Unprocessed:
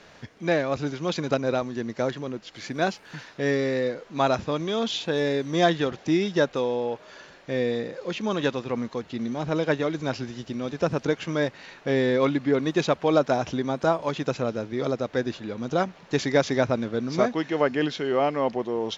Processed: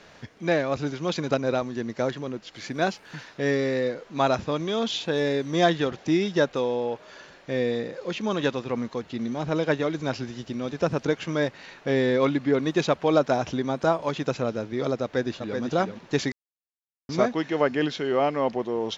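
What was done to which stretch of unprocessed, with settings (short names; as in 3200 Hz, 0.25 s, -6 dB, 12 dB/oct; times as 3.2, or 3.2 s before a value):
15.02–15.6 echo throw 0.38 s, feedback 10%, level -6 dB
16.32–17.09 mute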